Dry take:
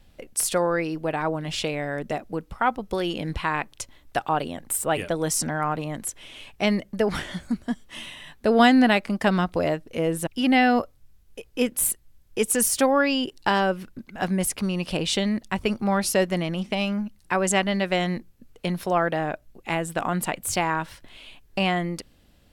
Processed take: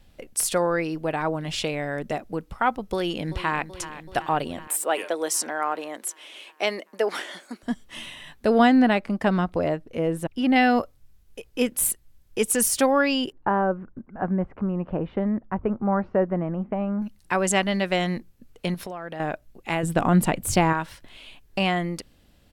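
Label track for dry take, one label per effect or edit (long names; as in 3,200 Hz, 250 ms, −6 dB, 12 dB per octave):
2.930000	3.680000	delay throw 380 ms, feedback 70%, level −13.5 dB
4.670000	7.630000	high-pass filter 330 Hz 24 dB per octave
8.580000	10.560000	high-shelf EQ 2,400 Hz −9.5 dB
13.320000	17.020000	low-pass filter 1,400 Hz 24 dB per octave
18.740000	19.200000	downward compressor 16 to 1, threshold −30 dBFS
19.830000	20.730000	low-shelf EQ 480 Hz +11 dB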